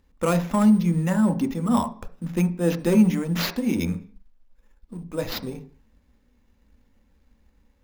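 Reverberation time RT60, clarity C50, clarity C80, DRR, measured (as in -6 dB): 0.45 s, 14.5 dB, 19.5 dB, 6.5 dB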